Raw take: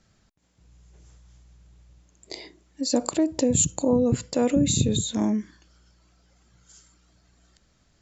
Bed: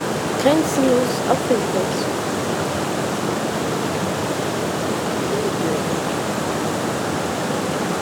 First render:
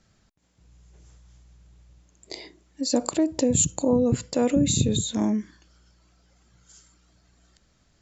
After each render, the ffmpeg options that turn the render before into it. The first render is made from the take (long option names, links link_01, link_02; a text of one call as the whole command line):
ffmpeg -i in.wav -af anull out.wav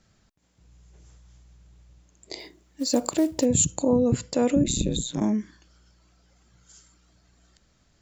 ffmpeg -i in.wav -filter_complex "[0:a]asplit=3[link_01][link_02][link_03];[link_01]afade=type=out:start_time=2.38:duration=0.02[link_04];[link_02]acrusher=bits=6:mode=log:mix=0:aa=0.000001,afade=type=in:start_time=2.38:duration=0.02,afade=type=out:start_time=3.44:duration=0.02[link_05];[link_03]afade=type=in:start_time=3.44:duration=0.02[link_06];[link_04][link_05][link_06]amix=inputs=3:normalize=0,asplit=3[link_07][link_08][link_09];[link_07]afade=type=out:start_time=4.63:duration=0.02[link_10];[link_08]aeval=exprs='val(0)*sin(2*PI*62*n/s)':channel_layout=same,afade=type=in:start_time=4.63:duration=0.02,afade=type=out:start_time=5.2:duration=0.02[link_11];[link_09]afade=type=in:start_time=5.2:duration=0.02[link_12];[link_10][link_11][link_12]amix=inputs=3:normalize=0" out.wav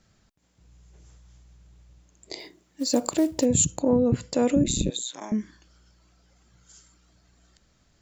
ffmpeg -i in.wav -filter_complex "[0:a]asettb=1/sr,asplit=3[link_01][link_02][link_03];[link_01]atrim=end=2.334[link_04];[link_02]atrim=start=2.33:end=3.08,asetpts=PTS-STARTPTS,afade=type=in:duration=0.004:curve=qsin,afade=type=out:start_time=0.746:duration=0.004:curve=qsin,highpass=99[link_05];[link_03]atrim=start=3.076[link_06];[link_04][link_05]acrossfade=duration=0.004:curve1=hsin:curve2=qsin[link_07];[link_07][link_06]acrossfade=duration=0.004:curve1=qsin:curve2=hsin,asettb=1/sr,asplit=3[link_08][link_09][link_10];[link_08]atrim=end=3.774[link_11];[link_09]atrim=start=3.77:end=4.21,asetpts=PTS-STARTPTS,afade=type=in:duration=0.004:curve=qsin,afade=type=out:start_time=0.436:duration=0.004:curve=qsin,adynamicsmooth=sensitivity=1.5:basefreq=3500[link_12];[link_10]atrim=start=4.206[link_13];[link_11][link_12]acrossfade=duration=0.004:curve1=hsin:curve2=qsin[link_14];[link_14][link_13]acrossfade=duration=0.004:curve1=qsin:curve2=hsin,asettb=1/sr,asplit=3[link_15][link_16][link_17];[link_15]atrim=end=4.904[link_18];[link_16]atrim=start=4.9:end=5.32,asetpts=PTS-STARTPTS,afade=type=in:duration=0.004:curve=qsin,afade=type=out:start_time=0.416:duration=0.004:curve=qsin,highpass=800[link_19];[link_17]atrim=start=5.316[link_20];[link_18][link_19]acrossfade=duration=0.004:curve1=hsin:curve2=qsin[link_21];[link_21][link_20]acrossfade=duration=0.004:curve1=qsin:curve2=hsin" out.wav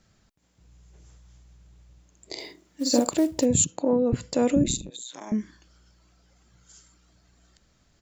ffmpeg -i in.wav -filter_complex "[0:a]asplit=3[link_01][link_02][link_03];[link_01]afade=type=out:start_time=2.36:duration=0.02[link_04];[link_02]asplit=2[link_05][link_06];[link_06]adelay=46,volume=-2dB[link_07];[link_05][link_07]amix=inputs=2:normalize=0,afade=type=in:start_time=2.36:duration=0.02,afade=type=out:start_time=3.09:duration=0.02[link_08];[link_03]afade=type=in:start_time=3.09:duration=0.02[link_09];[link_04][link_08][link_09]amix=inputs=3:normalize=0,asettb=1/sr,asplit=3[link_10][link_11][link_12];[link_10]atrim=end=3.644[link_13];[link_11]atrim=start=3.64:end=4.13,asetpts=PTS-STARTPTS,afade=type=in:duration=0.004:curve=qsin,afade=type=out:start_time=0.486:duration=0.004:curve=qsin,highpass=230,lowpass=4800[link_14];[link_12]atrim=start=4.126[link_15];[link_13][link_14]acrossfade=duration=0.004:curve1=hsin:curve2=qsin[link_16];[link_16][link_15]acrossfade=duration=0.004:curve1=qsin:curve2=hsin,asettb=1/sr,asplit=3[link_17][link_18][link_19];[link_17]atrim=end=4.764[link_20];[link_18]atrim=start=4.76:end=5.27,asetpts=PTS-STARTPTS,afade=type=in:duration=0.004:curve=qsin,afade=type=out:start_time=0.506:duration=0.004:curve=qsin,acompressor=threshold=-34dB:ratio=12:attack=3.2:release=140:knee=1:detection=peak[link_21];[link_19]atrim=start=5.266[link_22];[link_20][link_21]acrossfade=duration=0.004:curve1=hsin:curve2=qsin[link_23];[link_23][link_22]acrossfade=duration=0.004:curve1=qsin:curve2=hsin" out.wav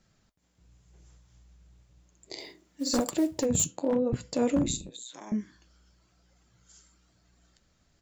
ffmpeg -i in.wav -af "aeval=exprs='0.211*(abs(mod(val(0)/0.211+3,4)-2)-1)':channel_layout=same,flanger=delay=5.4:depth=7.3:regen=-61:speed=0.95:shape=sinusoidal" out.wav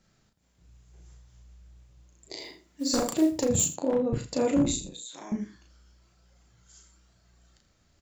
ffmpeg -i in.wav -filter_complex "[0:a]asplit=2[link_01][link_02];[link_02]adelay=35,volume=-3.5dB[link_03];[link_01][link_03]amix=inputs=2:normalize=0,aecho=1:1:82:0.178" out.wav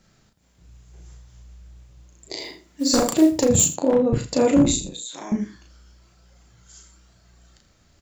ffmpeg -i in.wav -af "volume=7.5dB" out.wav